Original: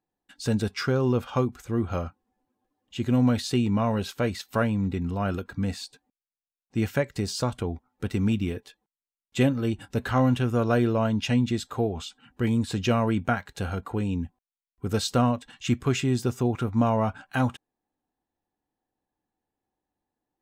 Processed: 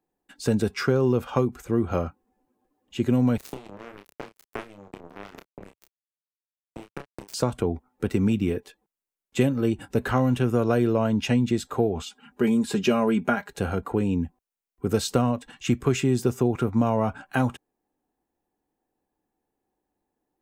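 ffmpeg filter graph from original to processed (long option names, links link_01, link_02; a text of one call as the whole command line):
ffmpeg -i in.wav -filter_complex "[0:a]asettb=1/sr,asplit=3[link_01][link_02][link_03];[link_01]atrim=end=3.374[link_04];[link_02]atrim=start=3.37:end=7.34,asetpts=PTS-STARTPTS,afade=type=in:duration=0.004:curve=qsin,afade=type=out:start_time=3.966:duration=0.004:curve=qsin,acompressor=threshold=-28dB:ratio=12:attack=3.2:release=140:knee=1:detection=peak,acrusher=bits=3:mix=0:aa=0.5,asplit=2[link_05][link_06];[link_06]adelay=30,volume=-7dB[link_07];[link_05][link_07]amix=inputs=2:normalize=0,atrim=end_sample=175077[link_08];[link_03]atrim=start=7.336[link_09];[link_04][link_08]acrossfade=duration=0.004:curve1=hsin:curve2=qsin[link_10];[link_10][link_09]acrossfade=duration=0.004:curve1=qsin:curve2=hsin,asettb=1/sr,asplit=3[link_11][link_12][link_13];[link_11]atrim=end=12.064[link_14];[link_12]atrim=start=12.06:end=13.52,asetpts=PTS-STARTPTS,afade=type=in:duration=0.004:curve=qsin,afade=type=out:start_time=1.456:duration=0.004:curve=qsin,highpass=frequency=180:poles=1,aecho=1:1:4.9:0.69,atrim=end_sample=64386[link_15];[link_13]atrim=start=13.516[link_16];[link_14][link_15]acrossfade=duration=0.004:curve1=hsin:curve2=qsin[link_17];[link_17][link_16]acrossfade=duration=0.004:curve1=qsin:curve2=hsin,equalizer=frequency=3500:width_type=o:width=1.9:gain=-7,acrossover=split=120|3000[link_18][link_19][link_20];[link_19]acompressor=threshold=-24dB:ratio=6[link_21];[link_18][link_21][link_20]amix=inputs=3:normalize=0,equalizer=frequency=100:width_type=o:width=0.67:gain=-5,equalizer=frequency=400:width_type=o:width=0.67:gain=4,equalizer=frequency=2500:width_type=o:width=0.67:gain=3,volume=4.5dB" out.wav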